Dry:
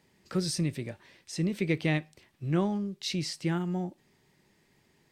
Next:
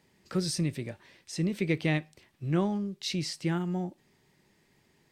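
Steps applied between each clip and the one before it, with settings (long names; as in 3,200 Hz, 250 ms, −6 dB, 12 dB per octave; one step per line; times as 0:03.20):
no processing that can be heard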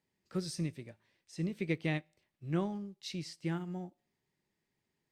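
tuned comb filter 55 Hz, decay 0.67 s, harmonics all, mix 30%
expander for the loud parts 1.5 to 1, over −51 dBFS
level −2.5 dB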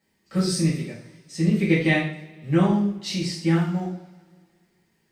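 coupled-rooms reverb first 0.49 s, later 2 s, from −22 dB, DRR −8.5 dB
level +5.5 dB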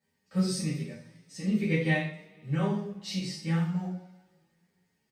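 notch comb filter 340 Hz
barber-pole flanger 9.9 ms +1.1 Hz
level −3 dB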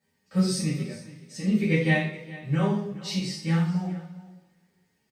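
single-tap delay 417 ms −18 dB
level +4 dB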